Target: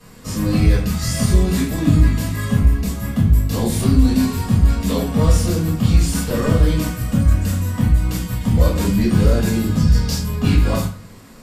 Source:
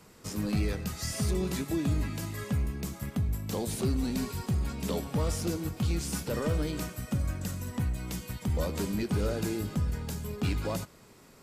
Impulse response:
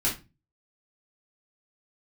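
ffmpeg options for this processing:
-filter_complex "[0:a]asettb=1/sr,asplit=3[link_01][link_02][link_03];[link_01]atrim=end=9.764[link_04];[link_02]atrim=start=9.76:end=10.19,asetpts=PTS-STARTPTS,afade=type=in:duration=0.004:curve=qsin,afade=type=out:start_time=0.426:duration=0.004:curve=qsin,equalizer=frequency=5200:width_type=o:width=0.79:gain=13.5[link_05];[link_03]atrim=start=10.186[link_06];[link_04][link_05]acrossfade=duration=0.004:curve1=hsin:curve2=qsin[link_07];[link_07][link_06]acrossfade=duration=0.004:curve1=qsin:curve2=hsin[link_08];[1:a]atrim=start_sample=2205,asetrate=32634,aresample=44100[link_09];[link_08][link_09]afir=irnorm=-1:irlink=0"

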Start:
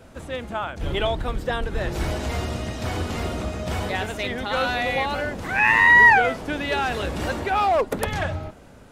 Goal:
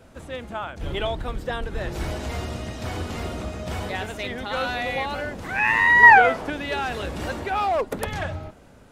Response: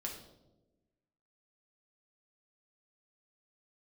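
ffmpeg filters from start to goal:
-filter_complex "[0:a]asettb=1/sr,asplit=3[link_01][link_02][link_03];[link_01]atrim=end=6.034[link_04];[link_02]atrim=start=6.03:end=6.5,asetpts=PTS-STARTPTS,afade=type=in:duration=0.004:curve=qsin,afade=type=out:start_time=0.466:duration=0.004:curve=qsin,equalizer=frequency=1000:width=0.44:gain=8[link_05];[link_03]atrim=start=6.496[link_06];[link_04][link_05]acrossfade=duration=0.004:curve1=hsin:curve2=qsin[link_07];[link_07][link_06]acrossfade=duration=0.004:curve1=qsin:curve2=hsin,volume=-3dB"

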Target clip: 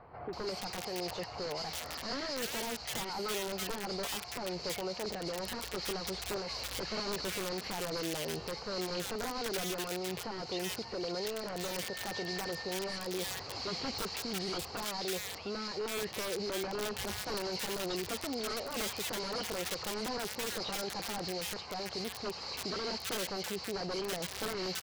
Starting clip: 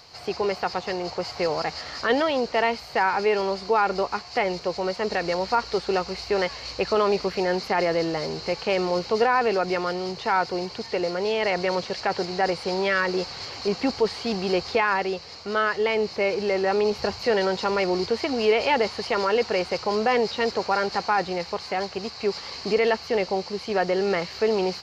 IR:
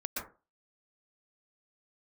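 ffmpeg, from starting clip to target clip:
-filter_complex "[0:a]asplit=2[link_01][link_02];[link_02]acompressor=threshold=-34dB:ratio=6,volume=1dB[link_03];[link_01][link_03]amix=inputs=2:normalize=0,aeval=exprs='(mod(5.62*val(0)+1,2)-1)/5.62':channel_layout=same,asettb=1/sr,asplit=3[link_04][link_05][link_06];[link_04]atrim=end=11.554[link_07];[link_05]atrim=start=11.55:end=12.63,asetpts=PTS-STARTPTS,afade=type=in:duration=0.004:curve=qsin,afade=type=out:start_time=1.076:duration=0.004:curve=qsin,aeval=exprs='val(0)+0.02*sin(2*PI*1800*n/s)':channel_layout=same[link_08];[link_06]atrim=start=12.626[link_09];[link_07][link_08]acrossfade=duration=0.004:curve1=hsin:curve2=qsin[link_10];[link_10][link_09]acrossfade=duration=0.004:curve1=qsin:curve2=hsin,alimiter=limit=-24dB:level=0:latency=1:release=28,acrossover=split=1600[link_11][link_12];[link_12]adelay=330[link_13];[link_11][link_13]amix=inputs=2:normalize=0,volume=-6dB"

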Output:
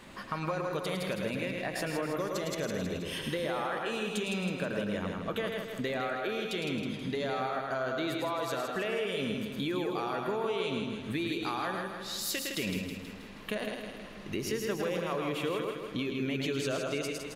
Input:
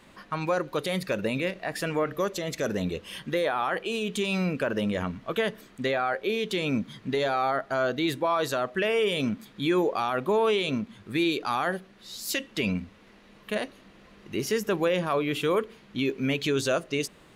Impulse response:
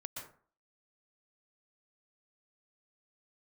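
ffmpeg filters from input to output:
-filter_complex "[0:a]asplit=2[link_01][link_02];[link_02]aecho=0:1:108:0.501[link_03];[link_01][link_03]amix=inputs=2:normalize=0,acompressor=threshold=-37dB:ratio=4,asplit=2[link_04][link_05];[link_05]aecho=0:1:160|320|480|640|800|960|1120:0.501|0.271|0.146|0.0789|0.0426|0.023|0.0124[link_06];[link_04][link_06]amix=inputs=2:normalize=0,volume=3.5dB"

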